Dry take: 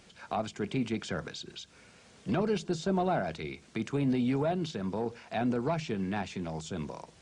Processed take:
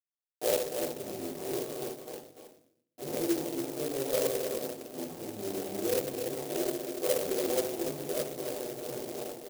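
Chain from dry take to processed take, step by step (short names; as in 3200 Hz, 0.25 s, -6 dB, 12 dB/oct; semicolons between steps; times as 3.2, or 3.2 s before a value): level-crossing sampler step -33 dBFS; comb 6.2 ms, depth 90%; transient shaper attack -3 dB, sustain +4 dB; compressor 5:1, threshold -35 dBFS, peak gain reduction 12 dB; backlash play -38 dBFS; wide varispeed 0.76×; Butterworth band-pass 510 Hz, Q 1.3; echo 0.288 s -6.5 dB; reverb RT60 0.60 s, pre-delay 3 ms, DRR -12 dB; clock jitter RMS 0.14 ms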